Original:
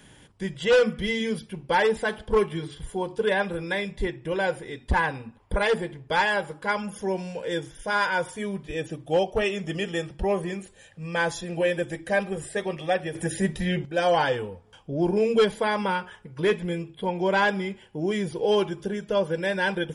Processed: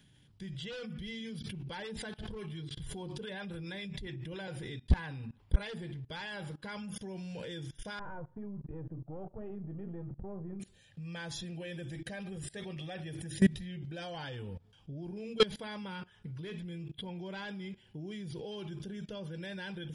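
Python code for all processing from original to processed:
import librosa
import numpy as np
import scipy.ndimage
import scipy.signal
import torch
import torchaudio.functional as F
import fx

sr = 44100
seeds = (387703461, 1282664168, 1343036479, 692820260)

y = fx.chain(x, sr, fx.harmonic_tremolo(hz=7.2, depth_pct=50, crossover_hz=670.0),
    fx.pre_swell(db_per_s=150.0), at=(1.39, 4.48))
y = fx.chain(y, sr, fx.halfwave_gain(db=-7.0),
    fx.lowpass(hz=1100.0, slope=24), at=(7.99, 10.6))
y = fx.graphic_eq(y, sr, hz=(125, 500, 1000, 2000, 4000, 8000), db=(7, -7, -7, -3, 5, -6))
y = fx.level_steps(y, sr, step_db=22)
y = y * librosa.db_to_amplitude(2.5)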